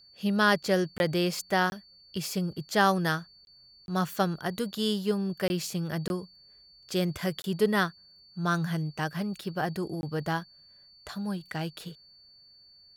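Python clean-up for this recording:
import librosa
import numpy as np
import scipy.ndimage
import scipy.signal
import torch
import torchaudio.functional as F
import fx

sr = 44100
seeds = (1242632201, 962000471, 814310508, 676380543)

y = fx.notch(x, sr, hz=4500.0, q=30.0)
y = fx.fix_interpolate(y, sr, at_s=(0.98, 1.7, 3.45, 3.86, 5.48, 6.08, 7.42, 10.01), length_ms=21.0)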